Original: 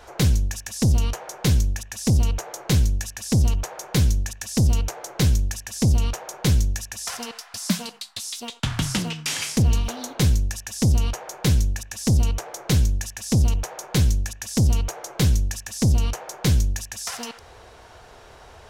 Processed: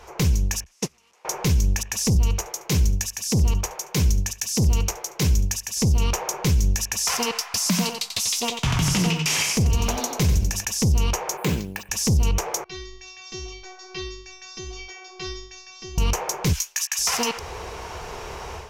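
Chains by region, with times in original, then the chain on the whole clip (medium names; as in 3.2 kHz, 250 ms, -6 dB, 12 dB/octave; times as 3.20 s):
0.64–1.25 s: one-bit delta coder 64 kbps, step -24.5 dBFS + frequency weighting A + gate -26 dBFS, range -37 dB
2.15–5.77 s: delay 72 ms -18.5 dB + three bands expanded up and down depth 70%
7.57–10.65 s: peaking EQ 660 Hz +4.5 dB 0.3 oct + delay 90 ms -7.5 dB
11.37–11.89 s: high-pass 210 Hz + distance through air 130 m + careless resampling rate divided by 4×, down filtered, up hold
12.64–15.98 s: steep low-pass 5.8 kHz 48 dB/octave + peaking EQ 3.2 kHz +8 dB 2.1 oct + inharmonic resonator 370 Hz, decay 0.8 s, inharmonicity 0.002
16.53–16.99 s: high-pass 1.1 kHz 24 dB/octave + doubling 16 ms -7.5 dB
whole clip: rippled EQ curve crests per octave 0.78, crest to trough 6 dB; level rider; peak limiter -12.5 dBFS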